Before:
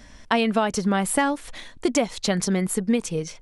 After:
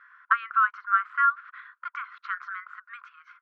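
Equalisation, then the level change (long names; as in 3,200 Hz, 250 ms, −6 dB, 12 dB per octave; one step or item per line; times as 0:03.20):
linear-phase brick-wall high-pass 1,000 Hz
low-pass with resonance 1,400 Hz, resonance Q 9.2
high-frequency loss of the air 200 metres
−4.0 dB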